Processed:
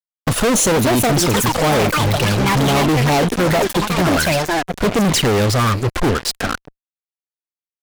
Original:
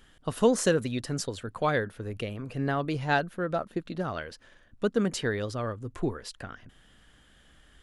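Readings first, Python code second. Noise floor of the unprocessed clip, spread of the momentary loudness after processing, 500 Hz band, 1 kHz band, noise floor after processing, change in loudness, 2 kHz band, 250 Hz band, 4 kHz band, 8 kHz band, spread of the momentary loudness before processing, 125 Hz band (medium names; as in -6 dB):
-60 dBFS, 5 LU, +11.5 dB, +15.0 dB, under -85 dBFS, +14.0 dB, +13.5 dB, +13.5 dB, +19.0 dB, +18.5 dB, 13 LU, +16.0 dB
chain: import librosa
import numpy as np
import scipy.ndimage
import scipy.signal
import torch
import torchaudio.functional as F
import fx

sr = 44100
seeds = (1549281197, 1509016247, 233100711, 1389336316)

y = fx.echo_pitch(x, sr, ms=563, semitones=6, count=3, db_per_echo=-6.0)
y = fx.env_flanger(y, sr, rest_ms=9.5, full_db=-24.5)
y = fx.fuzz(y, sr, gain_db=46.0, gate_db=-46.0)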